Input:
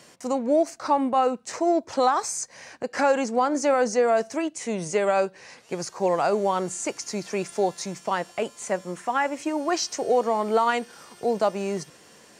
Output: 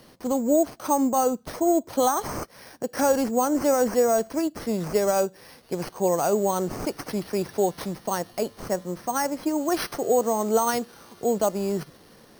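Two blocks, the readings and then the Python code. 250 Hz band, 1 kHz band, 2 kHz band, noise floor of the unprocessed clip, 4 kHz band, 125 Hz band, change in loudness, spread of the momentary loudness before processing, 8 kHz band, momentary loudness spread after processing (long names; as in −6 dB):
+2.5 dB, −2.0 dB, −5.0 dB, −52 dBFS, −2.0 dB, +3.5 dB, 0.0 dB, 9 LU, +1.5 dB, 10 LU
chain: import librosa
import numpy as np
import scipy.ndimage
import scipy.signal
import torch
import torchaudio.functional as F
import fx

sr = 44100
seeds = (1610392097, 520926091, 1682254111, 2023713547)

y = np.repeat(x[::6], 6)[:len(x)]
y = fx.curve_eq(y, sr, hz=(280.0, 2600.0, 4000.0), db=(0, -10, -2))
y = y * 10.0 ** (3.0 / 20.0)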